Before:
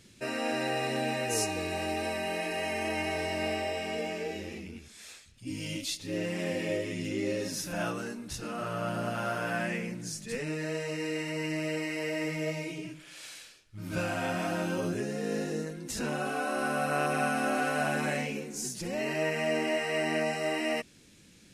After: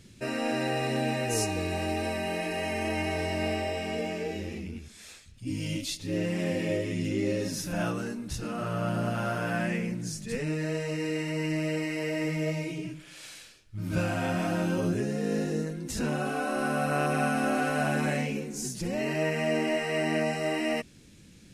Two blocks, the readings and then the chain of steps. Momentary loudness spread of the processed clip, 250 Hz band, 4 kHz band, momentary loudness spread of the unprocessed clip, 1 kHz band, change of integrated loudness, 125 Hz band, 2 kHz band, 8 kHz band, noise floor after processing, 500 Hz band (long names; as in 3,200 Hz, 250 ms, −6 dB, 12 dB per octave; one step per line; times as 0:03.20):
8 LU, +4.0 dB, 0.0 dB, 10 LU, +0.5 dB, +2.0 dB, +6.5 dB, 0.0 dB, 0.0 dB, −53 dBFS, +1.5 dB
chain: low-shelf EQ 240 Hz +9 dB